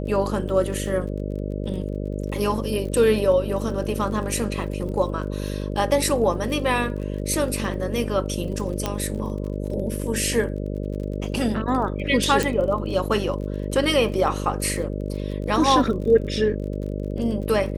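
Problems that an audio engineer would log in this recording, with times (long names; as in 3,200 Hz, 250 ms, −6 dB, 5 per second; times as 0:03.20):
mains buzz 50 Hz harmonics 12 −28 dBFS
surface crackle 33 per second −33 dBFS
0:08.86: click −9 dBFS
0:12.43: click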